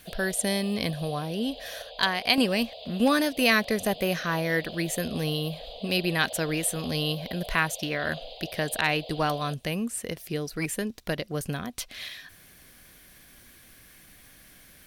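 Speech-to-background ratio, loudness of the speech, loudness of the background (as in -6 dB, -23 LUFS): 14.0 dB, -28.0 LUFS, -42.0 LUFS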